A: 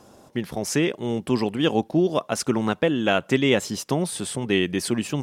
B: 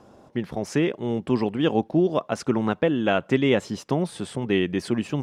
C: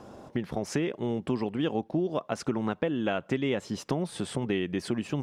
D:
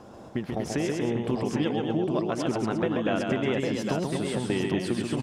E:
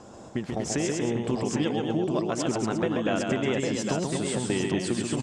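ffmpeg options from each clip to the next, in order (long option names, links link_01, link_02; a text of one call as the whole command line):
ffmpeg -i in.wav -af "aemphasis=mode=reproduction:type=75kf" out.wav
ffmpeg -i in.wav -af "acompressor=threshold=-33dB:ratio=3,volume=4dB" out.wav
ffmpeg -i in.wav -af "aecho=1:1:135|238|355|805:0.631|0.531|0.224|0.562" out.wav
ffmpeg -i in.wav -af "lowpass=frequency=7600:width_type=q:width=3.8" out.wav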